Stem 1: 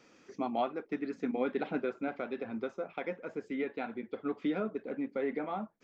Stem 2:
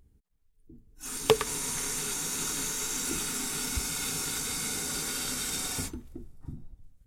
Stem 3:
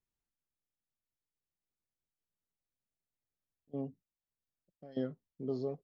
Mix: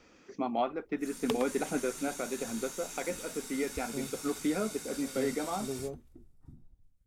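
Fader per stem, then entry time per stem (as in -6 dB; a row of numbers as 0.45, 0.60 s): +1.5, -11.5, -1.5 dB; 0.00, 0.00, 0.20 s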